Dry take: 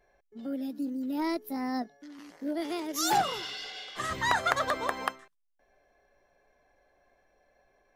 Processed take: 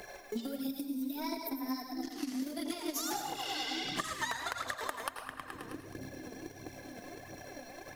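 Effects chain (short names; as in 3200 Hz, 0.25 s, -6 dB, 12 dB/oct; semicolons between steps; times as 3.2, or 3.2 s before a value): split-band echo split 310 Hz, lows 0.715 s, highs 0.106 s, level -7.5 dB; transient shaper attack +11 dB, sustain -11 dB; 0.67–1.95 ripple EQ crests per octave 1.6, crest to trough 10 dB; compressor 5:1, threshold -39 dBFS, peak gain reduction 23 dB; high shelf 4200 Hz +11.5 dB; reverb RT60 0.75 s, pre-delay 80 ms, DRR 6 dB; phaser 1.5 Hz, delay 4.6 ms, feedback 50%; three-band squash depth 70%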